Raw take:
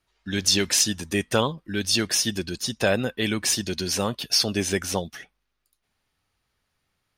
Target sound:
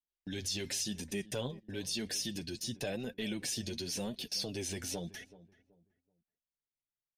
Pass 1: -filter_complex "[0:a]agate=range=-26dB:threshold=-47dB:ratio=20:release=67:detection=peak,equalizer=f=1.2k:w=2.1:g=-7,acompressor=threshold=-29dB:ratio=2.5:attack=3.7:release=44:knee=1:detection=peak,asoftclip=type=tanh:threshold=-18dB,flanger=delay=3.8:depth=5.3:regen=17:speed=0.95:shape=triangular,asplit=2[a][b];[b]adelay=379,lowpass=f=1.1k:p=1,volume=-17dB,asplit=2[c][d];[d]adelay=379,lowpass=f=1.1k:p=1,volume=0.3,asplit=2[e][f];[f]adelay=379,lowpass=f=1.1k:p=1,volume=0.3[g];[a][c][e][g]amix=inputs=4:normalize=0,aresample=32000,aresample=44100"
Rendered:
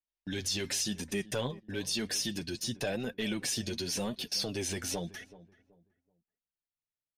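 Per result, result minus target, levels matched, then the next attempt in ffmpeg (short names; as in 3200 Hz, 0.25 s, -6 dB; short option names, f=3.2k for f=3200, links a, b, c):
compressor: peak gain reduction -4 dB; 1000 Hz band +2.5 dB
-filter_complex "[0:a]agate=range=-26dB:threshold=-47dB:ratio=20:release=67:detection=peak,equalizer=f=1.2k:w=2.1:g=-7,acompressor=threshold=-35.5dB:ratio=2.5:attack=3.7:release=44:knee=1:detection=peak,asoftclip=type=tanh:threshold=-18dB,flanger=delay=3.8:depth=5.3:regen=17:speed=0.95:shape=triangular,asplit=2[a][b];[b]adelay=379,lowpass=f=1.1k:p=1,volume=-17dB,asplit=2[c][d];[d]adelay=379,lowpass=f=1.1k:p=1,volume=0.3,asplit=2[e][f];[f]adelay=379,lowpass=f=1.1k:p=1,volume=0.3[g];[a][c][e][g]amix=inputs=4:normalize=0,aresample=32000,aresample=44100"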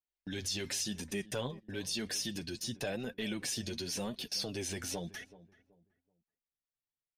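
1000 Hz band +2.5 dB
-filter_complex "[0:a]agate=range=-26dB:threshold=-47dB:ratio=20:release=67:detection=peak,equalizer=f=1.2k:w=2.1:g=-16.5,acompressor=threshold=-35.5dB:ratio=2.5:attack=3.7:release=44:knee=1:detection=peak,asoftclip=type=tanh:threshold=-18dB,flanger=delay=3.8:depth=5.3:regen=17:speed=0.95:shape=triangular,asplit=2[a][b];[b]adelay=379,lowpass=f=1.1k:p=1,volume=-17dB,asplit=2[c][d];[d]adelay=379,lowpass=f=1.1k:p=1,volume=0.3,asplit=2[e][f];[f]adelay=379,lowpass=f=1.1k:p=1,volume=0.3[g];[a][c][e][g]amix=inputs=4:normalize=0,aresample=32000,aresample=44100"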